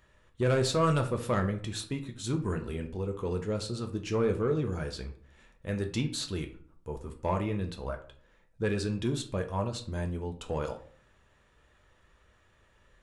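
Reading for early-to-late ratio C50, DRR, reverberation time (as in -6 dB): 12.0 dB, 4.0 dB, 0.50 s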